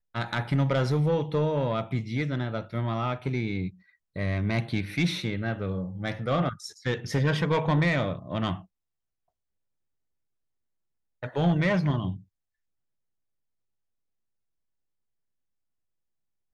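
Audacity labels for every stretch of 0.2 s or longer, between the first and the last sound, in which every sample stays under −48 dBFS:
3.750000	4.160000	silence
8.650000	11.230000	silence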